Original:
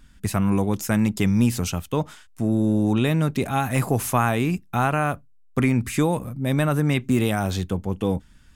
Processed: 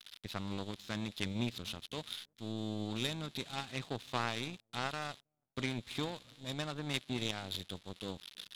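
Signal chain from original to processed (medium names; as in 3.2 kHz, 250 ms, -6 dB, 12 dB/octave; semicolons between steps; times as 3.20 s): zero-crossing glitches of -13.5 dBFS; four-pole ladder low-pass 4 kHz, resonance 70%; feedback echo behind a low-pass 323 ms, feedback 49%, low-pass 560 Hz, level -19.5 dB; power-law waveshaper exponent 2; trim +2 dB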